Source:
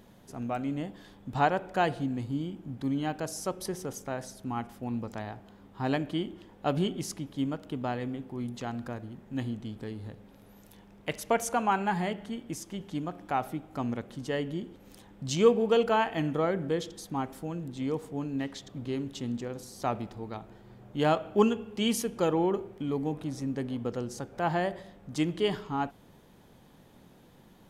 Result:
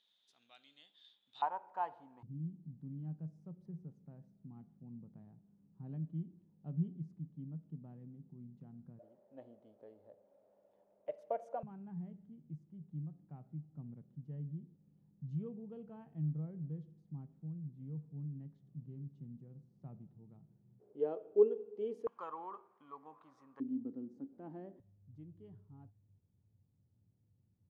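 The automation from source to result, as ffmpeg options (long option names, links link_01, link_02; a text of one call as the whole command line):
ffmpeg -i in.wav -af "asetnsamples=nb_out_samples=441:pad=0,asendcmd='1.42 bandpass f 930;2.23 bandpass f 160;8.99 bandpass f 590;11.63 bandpass f 150;20.8 bandpass f 430;22.07 bandpass f 1100;23.6 bandpass f 270;24.8 bandpass f 100',bandpass=frequency=3600:width_type=q:width=9.2:csg=0" out.wav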